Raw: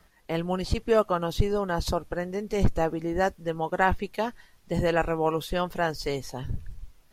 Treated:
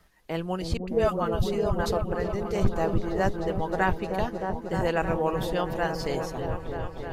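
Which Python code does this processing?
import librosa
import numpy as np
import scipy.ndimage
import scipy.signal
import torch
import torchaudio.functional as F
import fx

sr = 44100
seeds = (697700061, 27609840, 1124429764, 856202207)

p1 = fx.dispersion(x, sr, late='highs', ms=106.0, hz=410.0, at=(0.77, 1.86))
p2 = p1 + fx.echo_opening(p1, sr, ms=310, hz=400, octaves=1, feedback_pct=70, wet_db=-3, dry=0)
y = p2 * 10.0 ** (-2.0 / 20.0)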